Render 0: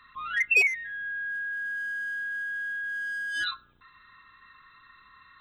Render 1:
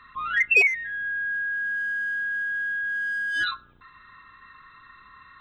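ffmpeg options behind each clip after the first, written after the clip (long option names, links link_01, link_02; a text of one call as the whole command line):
ffmpeg -i in.wav -af "highshelf=frequency=3400:gain=-11,volume=7dB" out.wav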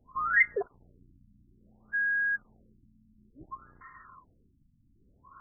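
ffmpeg -i in.wav -af "afftfilt=real='re*lt(b*sr/1024,280*pow(2200/280,0.5+0.5*sin(2*PI*0.58*pts/sr)))':imag='im*lt(b*sr/1024,280*pow(2200/280,0.5+0.5*sin(2*PI*0.58*pts/sr)))':win_size=1024:overlap=0.75" out.wav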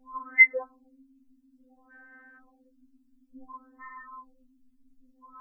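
ffmpeg -i in.wav -af "afftfilt=real='re*3.46*eq(mod(b,12),0)':imag='im*3.46*eq(mod(b,12),0)':win_size=2048:overlap=0.75,volume=6.5dB" out.wav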